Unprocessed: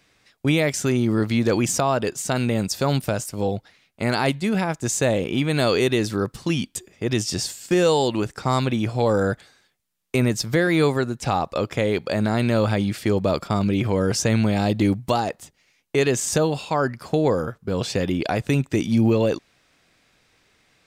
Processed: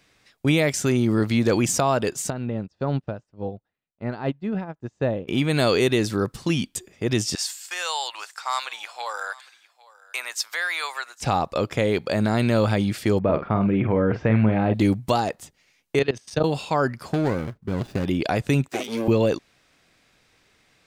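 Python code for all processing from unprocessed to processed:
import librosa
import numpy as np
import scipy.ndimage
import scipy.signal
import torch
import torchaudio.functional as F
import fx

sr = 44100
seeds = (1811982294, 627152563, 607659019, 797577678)

y = fx.chain(x, sr, fx.spacing_loss(db_at_10k=37),
    fx.notch(hz=2200.0, q=11.0),
    fx.upward_expand(threshold_db=-34.0, expansion=2.5), at=(2.3, 5.28))
y = fx.chain(y, sr, fx.highpass(hz=900.0, slope=24),
    fx.echo_single(ms=806, db=-22.0), at=(7.35, 11.21))
y = fx.chain(y, sr, fx.lowpass(hz=2300.0, slope=24),
    fx.doubler(ms=46.0, db=-9), at=(13.19, 14.74))
y = fx.chain(y, sr, fx.savgol(points=15),
    fx.level_steps(step_db=18),
    fx.band_widen(depth_pct=100), at=(15.99, 16.44))
y = fx.chain(y, sr, fx.median_filter(points=41),
    fx.peak_eq(hz=480.0, db=-8.5, octaves=0.3), at=(17.13, 18.06))
y = fx.chain(y, sr, fx.lower_of_two(delay_ms=8.0),
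    fx.highpass(hz=360.0, slope=12),
    fx.high_shelf(hz=12000.0, db=5.5), at=(18.68, 19.08))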